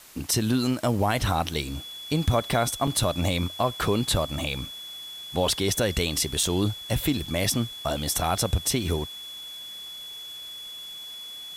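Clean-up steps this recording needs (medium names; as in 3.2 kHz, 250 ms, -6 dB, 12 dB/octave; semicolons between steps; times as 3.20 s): band-stop 3.4 kHz, Q 30; interpolate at 0.99/1.54/2.87/6.43/7.26 s, 3.7 ms; noise reduction 30 dB, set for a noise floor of -40 dBFS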